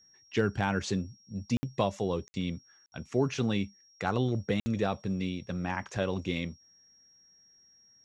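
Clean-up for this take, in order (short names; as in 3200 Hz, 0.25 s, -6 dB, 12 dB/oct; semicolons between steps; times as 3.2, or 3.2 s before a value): clip repair -15.5 dBFS; notch 5600 Hz, Q 30; interpolate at 1.57/2.28/2.86/4.6, 60 ms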